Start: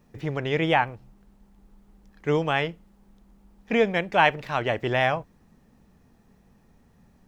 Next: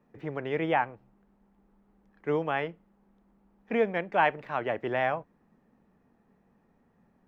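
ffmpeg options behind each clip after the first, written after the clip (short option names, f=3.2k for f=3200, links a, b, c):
-filter_complex "[0:a]acrossover=split=170 2400:gain=0.251 1 0.158[a][b][c];[a][b][c]amix=inputs=3:normalize=0,volume=-4dB"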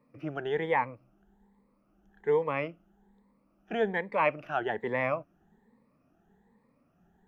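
-af "afftfilt=real='re*pow(10,15/40*sin(2*PI*(0.96*log(max(b,1)*sr/1024/100)/log(2)-(1.2)*(pts-256)/sr)))':imag='im*pow(10,15/40*sin(2*PI*(0.96*log(max(b,1)*sr/1024/100)/log(2)-(1.2)*(pts-256)/sr)))':win_size=1024:overlap=0.75,volume=-3dB"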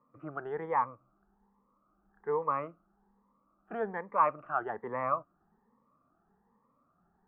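-af "lowpass=f=1.2k:t=q:w=6.2,volume=-7.5dB"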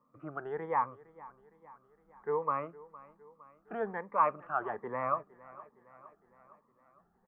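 -af "aecho=1:1:461|922|1383|1844|2305:0.1|0.057|0.0325|0.0185|0.0106,volume=-1dB"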